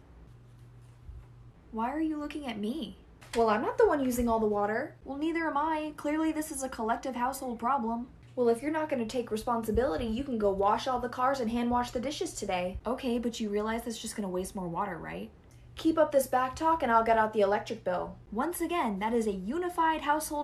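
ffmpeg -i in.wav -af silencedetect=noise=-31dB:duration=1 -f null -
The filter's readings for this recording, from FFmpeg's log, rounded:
silence_start: 0.00
silence_end: 1.76 | silence_duration: 1.76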